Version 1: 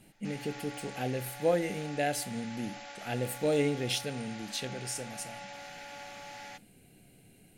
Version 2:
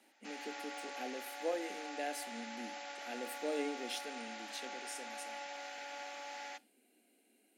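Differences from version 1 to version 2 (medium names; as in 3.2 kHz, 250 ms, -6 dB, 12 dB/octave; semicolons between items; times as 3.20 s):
speech -9.0 dB; master: add Chebyshev high-pass 230 Hz, order 6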